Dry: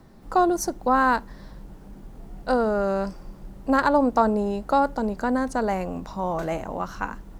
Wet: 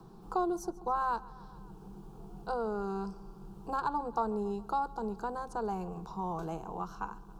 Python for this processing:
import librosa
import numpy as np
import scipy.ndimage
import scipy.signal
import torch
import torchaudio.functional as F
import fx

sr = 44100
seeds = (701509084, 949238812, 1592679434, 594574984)

y = fx.high_shelf(x, sr, hz=4100.0, db=-6.5)
y = fx.fixed_phaser(y, sr, hz=390.0, stages=8)
y = fx.echo_feedback(y, sr, ms=138, feedback_pct=60, wet_db=-22.5)
y = fx.band_squash(y, sr, depth_pct=40)
y = F.gain(torch.from_numpy(y), -8.0).numpy()